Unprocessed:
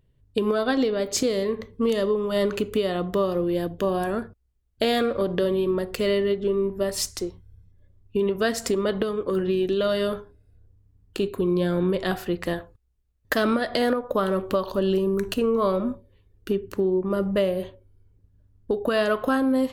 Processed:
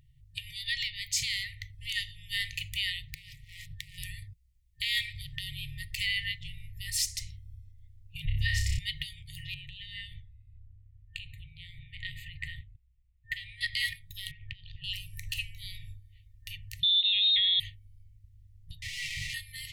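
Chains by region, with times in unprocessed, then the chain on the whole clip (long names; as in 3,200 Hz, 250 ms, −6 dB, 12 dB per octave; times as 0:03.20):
0:03.08–0:03.98: downward compressor 10 to 1, threshold −28 dBFS + highs frequency-modulated by the lows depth 0.52 ms
0:08.25–0:08.79: spectral tilt −3.5 dB per octave + flutter between parallel walls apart 5.2 metres, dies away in 0.47 s
0:09.54–0:13.61: downward compressor 2.5 to 1, threshold −26 dBFS + moving average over 8 samples
0:14.31–0:14.84: low-pass filter 2,900 Hz 24 dB per octave + downward compressor, threshold −28 dBFS
0:16.83–0:17.60: high-shelf EQ 3,000 Hz +10 dB + voice inversion scrambler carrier 3,900 Hz
0:18.82–0:19.34: comparator with hysteresis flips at −41.5 dBFS + high-frequency loss of the air 56 metres + tuned comb filter 390 Hz, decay 0.16 s, mix 70%
whole clip: brick-wall band-stop 160–1,800 Hz; dynamic equaliser 2,200 Hz, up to +4 dB, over −40 dBFS, Q 0.89; brickwall limiter −21.5 dBFS; level +3 dB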